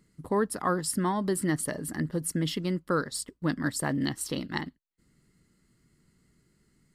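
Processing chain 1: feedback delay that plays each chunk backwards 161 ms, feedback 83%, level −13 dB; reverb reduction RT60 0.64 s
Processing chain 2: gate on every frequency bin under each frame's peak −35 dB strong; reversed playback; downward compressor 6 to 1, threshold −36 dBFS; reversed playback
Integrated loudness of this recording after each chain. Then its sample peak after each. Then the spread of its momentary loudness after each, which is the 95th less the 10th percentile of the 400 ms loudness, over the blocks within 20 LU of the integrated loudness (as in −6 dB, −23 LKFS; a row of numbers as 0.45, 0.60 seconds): −30.5, −39.5 LKFS; −13.0, −22.0 dBFS; 17, 3 LU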